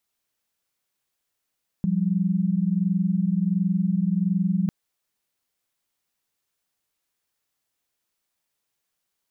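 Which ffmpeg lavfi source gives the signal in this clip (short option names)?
-f lavfi -i "aevalsrc='0.075*(sin(2*PI*174.61*t)+sin(2*PI*196*t))':d=2.85:s=44100"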